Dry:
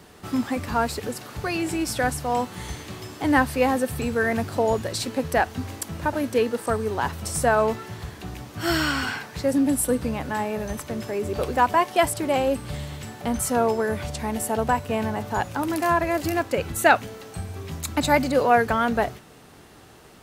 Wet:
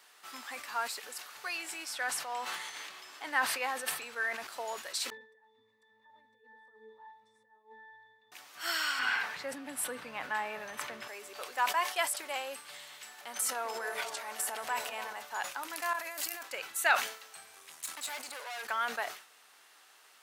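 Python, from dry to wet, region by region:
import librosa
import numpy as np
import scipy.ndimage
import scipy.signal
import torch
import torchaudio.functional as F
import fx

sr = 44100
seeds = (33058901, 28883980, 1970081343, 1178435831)

y = fx.chain(x, sr, fx.high_shelf(hz=6200.0, db=-8.5),
    fx.sustainer(db_per_s=28.0), at=(1.85, 4.47))
y = fx.chain(y, sr, fx.over_compress(threshold_db=-25.0, ratio=-0.5),
    fx.octave_resonator(note='A', decay_s=0.4), at=(5.1, 8.32))
y = fx.chain(y, sr, fx.bass_treble(bass_db=11, treble_db=-12),
    fx.env_flatten(amount_pct=50), at=(8.99, 11.08))
y = fx.chain(y, sr, fx.transient(attack_db=-3, sustain_db=11),
    fx.echo_stepped(ms=145, hz=350.0, octaves=0.7, feedback_pct=70, wet_db=-2), at=(13.18, 15.13))
y = fx.chain(y, sr, fx.high_shelf(hz=6800.0, db=11.0),
    fx.over_compress(threshold_db=-29.0, ratio=-1.0), at=(15.93, 16.43))
y = fx.chain(y, sr, fx.peak_eq(hz=9400.0, db=9.0, octaves=0.78),
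    fx.tube_stage(drive_db=27.0, bias=0.6), at=(17.55, 18.65))
y = scipy.signal.sosfilt(scipy.signal.butter(2, 1200.0, 'highpass', fs=sr, output='sos'), y)
y = fx.sustainer(y, sr, db_per_s=110.0)
y = F.gain(torch.from_numpy(y), -5.5).numpy()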